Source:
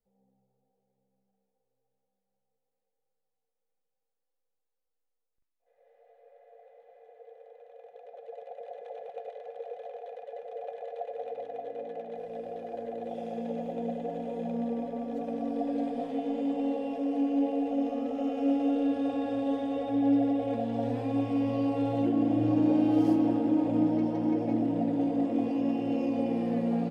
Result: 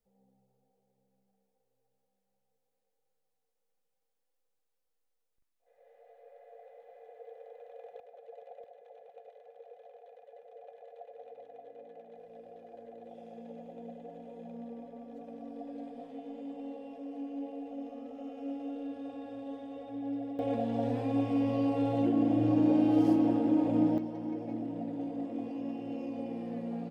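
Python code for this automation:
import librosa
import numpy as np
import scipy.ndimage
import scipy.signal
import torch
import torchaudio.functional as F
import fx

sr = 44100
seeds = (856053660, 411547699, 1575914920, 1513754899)

y = fx.gain(x, sr, db=fx.steps((0.0, 2.0), (8.0, -6.0), (8.64, -12.0), (20.39, -1.0), (23.98, -9.0)))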